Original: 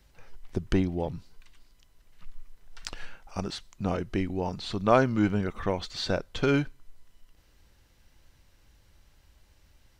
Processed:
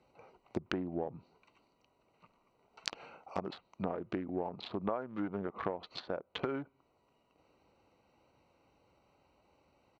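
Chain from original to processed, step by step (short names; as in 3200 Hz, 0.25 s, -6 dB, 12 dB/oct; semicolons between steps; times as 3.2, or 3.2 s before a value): Wiener smoothing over 25 samples; weighting filter A; pitch shift -0.5 st; compressor 10:1, threshold -39 dBFS, peak gain reduction 22.5 dB; treble ducked by the level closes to 1100 Hz, closed at -40 dBFS; gain +7.5 dB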